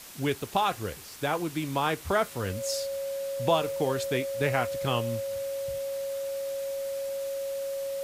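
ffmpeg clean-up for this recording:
-af "adeclick=t=4,bandreject=f=550:w=30,afwtdn=0.0056"

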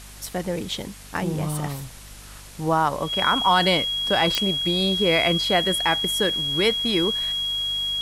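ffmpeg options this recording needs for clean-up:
-af "adeclick=t=4,bandreject=f=49.7:t=h:w=4,bandreject=f=99.4:t=h:w=4,bandreject=f=149.1:t=h:w=4,bandreject=f=198.8:t=h:w=4,bandreject=f=248.5:t=h:w=4,bandreject=f=3.3k:w=30,afwtdn=0.0071"

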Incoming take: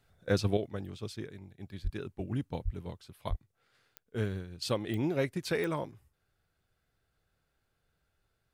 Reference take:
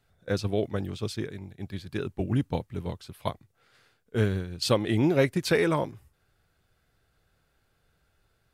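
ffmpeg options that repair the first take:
-filter_complex "[0:a]adeclick=t=4,asplit=3[a][b][c];[a]afade=t=out:st=1.83:d=0.02[d];[b]highpass=f=140:w=0.5412,highpass=f=140:w=1.3066,afade=t=in:st=1.83:d=0.02,afade=t=out:st=1.95:d=0.02[e];[c]afade=t=in:st=1.95:d=0.02[f];[d][e][f]amix=inputs=3:normalize=0,asplit=3[g][h][i];[g]afade=t=out:st=2.64:d=0.02[j];[h]highpass=f=140:w=0.5412,highpass=f=140:w=1.3066,afade=t=in:st=2.64:d=0.02,afade=t=out:st=2.76:d=0.02[k];[i]afade=t=in:st=2.76:d=0.02[l];[j][k][l]amix=inputs=3:normalize=0,asplit=3[m][n][o];[m]afade=t=out:st=3.29:d=0.02[p];[n]highpass=f=140:w=0.5412,highpass=f=140:w=1.3066,afade=t=in:st=3.29:d=0.02,afade=t=out:st=3.41:d=0.02[q];[o]afade=t=in:st=3.41:d=0.02[r];[p][q][r]amix=inputs=3:normalize=0,asetnsamples=n=441:p=0,asendcmd='0.57 volume volume 8dB',volume=0dB"

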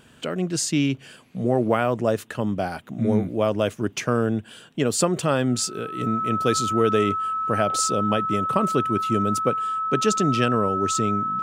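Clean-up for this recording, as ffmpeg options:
-af "bandreject=f=1.3k:w=30"

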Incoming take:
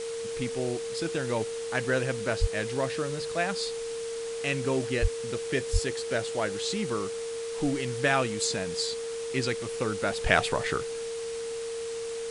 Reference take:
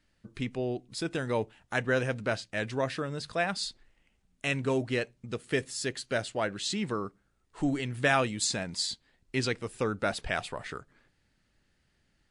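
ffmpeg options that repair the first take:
-filter_complex "[0:a]bandreject=f=460:w=30,asplit=3[a][b][c];[a]afade=t=out:st=2.4:d=0.02[d];[b]highpass=f=140:w=0.5412,highpass=f=140:w=1.3066,afade=t=in:st=2.4:d=0.02,afade=t=out:st=2.52:d=0.02[e];[c]afade=t=in:st=2.52:d=0.02[f];[d][e][f]amix=inputs=3:normalize=0,asplit=3[g][h][i];[g]afade=t=out:st=5.01:d=0.02[j];[h]highpass=f=140:w=0.5412,highpass=f=140:w=1.3066,afade=t=in:st=5.01:d=0.02,afade=t=out:st=5.13:d=0.02[k];[i]afade=t=in:st=5.13:d=0.02[l];[j][k][l]amix=inputs=3:normalize=0,asplit=3[m][n][o];[m]afade=t=out:st=5.72:d=0.02[p];[n]highpass=f=140:w=0.5412,highpass=f=140:w=1.3066,afade=t=in:st=5.72:d=0.02,afade=t=out:st=5.84:d=0.02[q];[o]afade=t=in:st=5.84:d=0.02[r];[p][q][r]amix=inputs=3:normalize=0,afwtdn=0.0089,asetnsamples=n=441:p=0,asendcmd='10.21 volume volume -9dB',volume=0dB"

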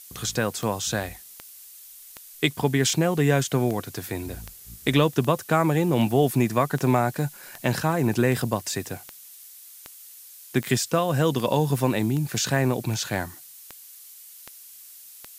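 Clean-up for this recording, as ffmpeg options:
-af "adeclick=t=4,afftdn=nr=23:nf=-46"

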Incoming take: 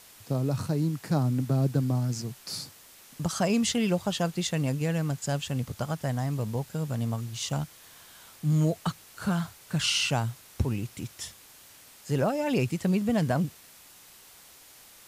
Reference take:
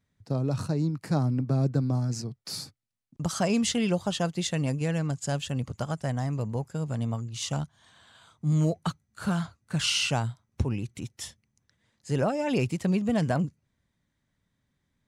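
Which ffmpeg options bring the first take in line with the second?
-af "afwtdn=0.0028"

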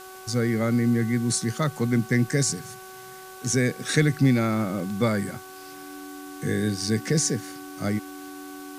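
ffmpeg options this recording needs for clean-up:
-af "bandreject=f=376.4:t=h:w=4,bandreject=f=752.8:t=h:w=4,bandreject=f=1.1292k:t=h:w=4,bandreject=f=1.5056k:t=h:w=4,bandreject=f=290:w=30,afftdn=nr=27:nf=-42"

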